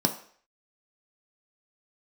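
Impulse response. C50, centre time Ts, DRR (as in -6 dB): 11.5 dB, 12 ms, 3.5 dB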